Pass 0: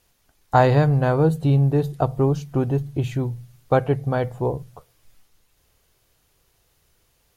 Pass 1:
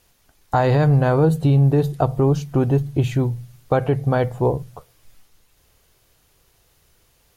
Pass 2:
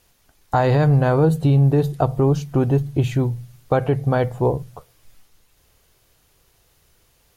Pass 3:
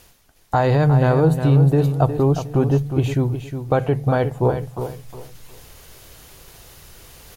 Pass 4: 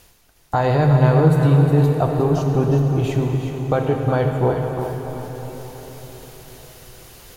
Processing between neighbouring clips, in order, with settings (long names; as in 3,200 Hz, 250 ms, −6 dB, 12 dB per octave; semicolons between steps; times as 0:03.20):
brickwall limiter −12 dBFS, peak gain reduction 8 dB; level +4.5 dB
no processing that can be heard
reversed playback; upward compression, threshold −30 dBFS; reversed playback; repeating echo 361 ms, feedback 27%, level −9 dB
dense smooth reverb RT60 5 s, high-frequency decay 0.95×, DRR 2.5 dB; level −1 dB